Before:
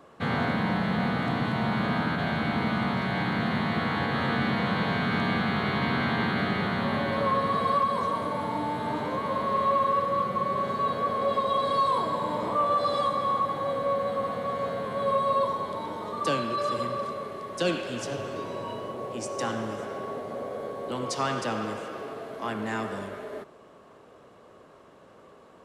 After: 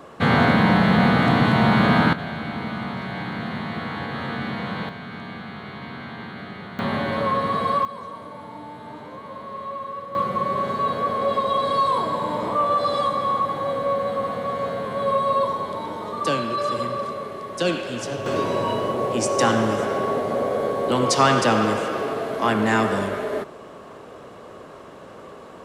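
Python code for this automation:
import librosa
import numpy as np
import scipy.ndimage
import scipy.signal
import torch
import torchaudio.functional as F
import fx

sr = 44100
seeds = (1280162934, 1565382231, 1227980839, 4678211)

y = fx.gain(x, sr, db=fx.steps((0.0, 10.0), (2.13, -2.0), (4.89, -9.0), (6.79, 3.0), (7.85, -8.0), (10.15, 4.0), (18.26, 11.5)))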